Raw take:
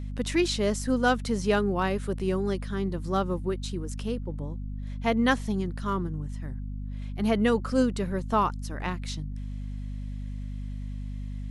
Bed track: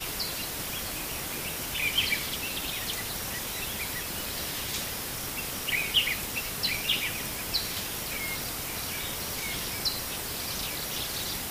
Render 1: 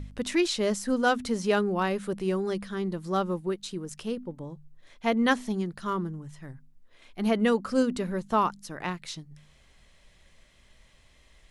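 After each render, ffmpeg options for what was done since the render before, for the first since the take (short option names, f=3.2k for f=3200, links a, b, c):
-af "bandreject=f=50:t=h:w=4,bandreject=f=100:t=h:w=4,bandreject=f=150:t=h:w=4,bandreject=f=200:t=h:w=4,bandreject=f=250:t=h:w=4"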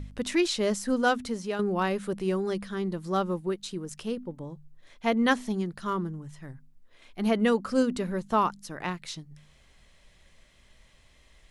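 -filter_complex "[0:a]asplit=2[a][b];[a]atrim=end=1.59,asetpts=PTS-STARTPTS,afade=t=out:st=1.06:d=0.53:silence=0.334965[c];[b]atrim=start=1.59,asetpts=PTS-STARTPTS,afade=t=in:d=0.004:c=hsin:silence=0.334965[d];[c][d]concat=n=2:v=0:a=1"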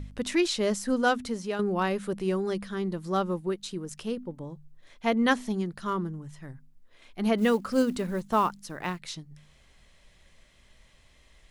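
-filter_complex "[0:a]asplit=3[a][b][c];[a]afade=t=out:st=7.37:d=0.02[d];[b]acrusher=bits=7:mode=log:mix=0:aa=0.000001,afade=t=in:st=7.37:d=0.02,afade=t=out:st=8.98:d=0.02[e];[c]afade=t=in:st=8.98:d=0.02[f];[d][e][f]amix=inputs=3:normalize=0"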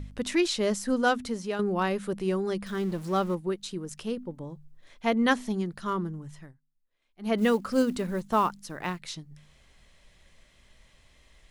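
-filter_complex "[0:a]asettb=1/sr,asplit=3[a][b][c];[a]atrim=end=2.664[d];[b]atrim=start=2.66:end=3.35,asetpts=PTS-STARTPTS,afade=t=in:d=0.004:c=qsin,afade=t=out:st=0.686:d=0.004:c=qsin,aeval=exprs='val(0)+0.5*0.00944*sgn(val(0))':c=same[e];[c]atrim=start=3.346[f];[d][e]acrossfade=d=0.004:c1=hsin:c2=qsin[g];[g][f]acrossfade=d=0.004:c1=qsin:c2=hsin,asplit=3[h][i][j];[h]atrim=end=6.61,asetpts=PTS-STARTPTS,afade=t=out:st=6.4:d=0.21:c=qua:silence=0.0794328[k];[i]atrim=start=6.61:end=7.13,asetpts=PTS-STARTPTS,volume=-22dB[l];[j]atrim=start=7.13,asetpts=PTS-STARTPTS,afade=t=in:d=0.21:c=qua:silence=0.0794328[m];[k][l][m]concat=n=3:v=0:a=1"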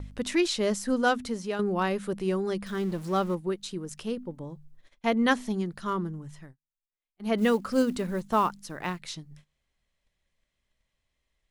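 -af "agate=range=-20dB:threshold=-50dB:ratio=16:detection=peak"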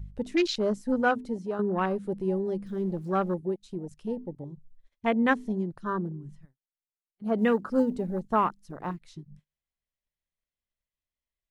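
-af "afwtdn=0.0224"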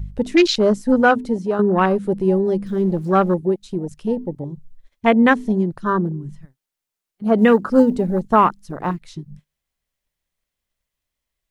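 -af "volume=11dB,alimiter=limit=-3dB:level=0:latency=1"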